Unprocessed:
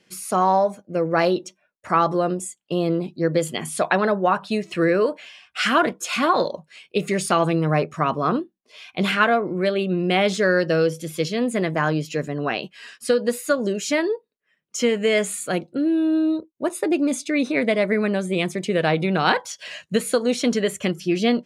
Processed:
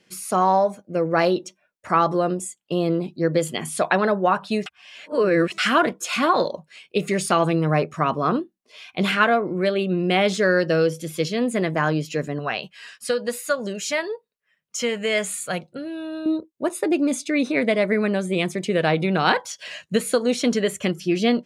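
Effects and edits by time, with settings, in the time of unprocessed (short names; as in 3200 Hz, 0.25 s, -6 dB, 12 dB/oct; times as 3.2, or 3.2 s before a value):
4.66–5.58 reverse
12.39–16.26 bell 310 Hz -12.5 dB 0.85 oct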